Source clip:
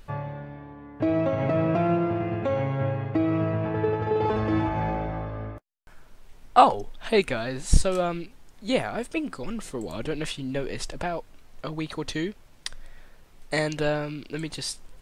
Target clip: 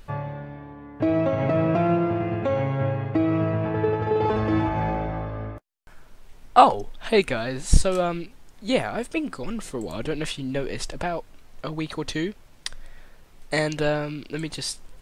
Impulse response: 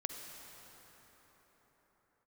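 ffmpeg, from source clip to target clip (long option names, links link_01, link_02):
-af "volume=2dB"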